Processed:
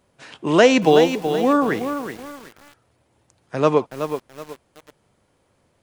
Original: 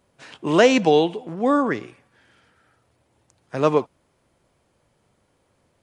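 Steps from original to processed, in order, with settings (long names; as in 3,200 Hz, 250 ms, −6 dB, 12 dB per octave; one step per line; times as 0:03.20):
feedback echo at a low word length 375 ms, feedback 35%, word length 6 bits, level −8 dB
level +1.5 dB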